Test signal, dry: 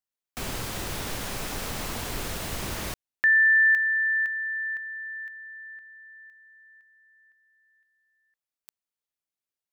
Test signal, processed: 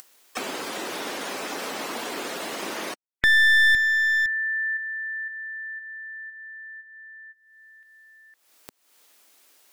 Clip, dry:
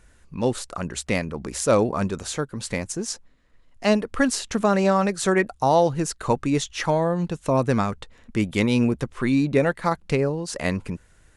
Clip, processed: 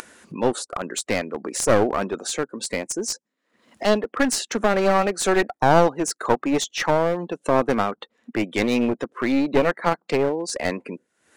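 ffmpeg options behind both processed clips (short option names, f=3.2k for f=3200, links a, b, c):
-filter_complex "[0:a]afftdn=nr=25:nf=-41,highpass=f=260:w=0.5412,highpass=f=260:w=1.3066,adynamicequalizer=threshold=0.0126:dfrequency=740:dqfactor=7.3:tfrequency=740:tqfactor=7.3:attack=5:release=100:ratio=0.438:range=2:mode=boostabove:tftype=bell,asplit=2[a][b];[b]acompressor=mode=upward:threshold=-32dB:ratio=4:attack=38:release=306:knee=2.83:detection=peak,volume=-2dB[c];[a][c]amix=inputs=2:normalize=0,aeval=exprs='clip(val(0),-1,0.1)':c=same,volume=-1dB"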